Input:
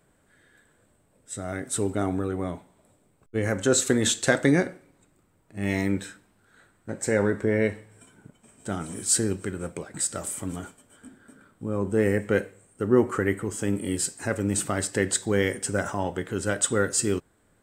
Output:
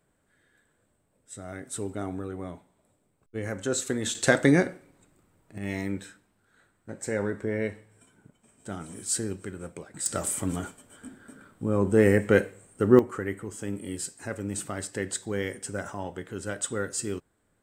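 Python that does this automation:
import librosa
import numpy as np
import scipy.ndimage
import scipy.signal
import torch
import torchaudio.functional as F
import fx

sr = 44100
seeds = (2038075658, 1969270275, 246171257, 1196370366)

y = fx.gain(x, sr, db=fx.steps((0.0, -7.0), (4.15, 0.5), (5.58, -6.0), (10.06, 3.0), (12.99, -7.0)))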